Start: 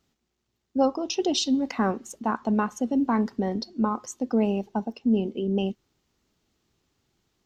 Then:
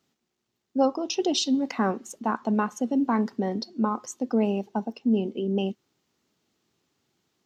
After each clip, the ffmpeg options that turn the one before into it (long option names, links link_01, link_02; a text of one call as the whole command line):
ffmpeg -i in.wav -af "highpass=140" out.wav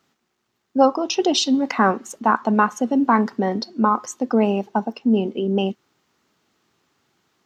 ffmpeg -i in.wav -af "equalizer=frequency=1300:width_type=o:width=1.8:gain=7.5,volume=4.5dB" out.wav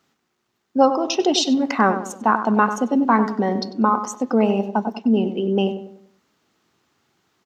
ffmpeg -i in.wav -filter_complex "[0:a]asplit=2[link_01][link_02];[link_02]adelay=96,lowpass=frequency=1700:poles=1,volume=-9dB,asplit=2[link_03][link_04];[link_04]adelay=96,lowpass=frequency=1700:poles=1,volume=0.42,asplit=2[link_05][link_06];[link_06]adelay=96,lowpass=frequency=1700:poles=1,volume=0.42,asplit=2[link_07][link_08];[link_08]adelay=96,lowpass=frequency=1700:poles=1,volume=0.42,asplit=2[link_09][link_10];[link_10]adelay=96,lowpass=frequency=1700:poles=1,volume=0.42[link_11];[link_01][link_03][link_05][link_07][link_09][link_11]amix=inputs=6:normalize=0" out.wav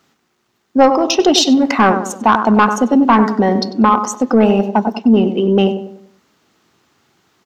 ffmpeg -i in.wav -af "asoftclip=type=tanh:threshold=-9dB,volume=8dB" out.wav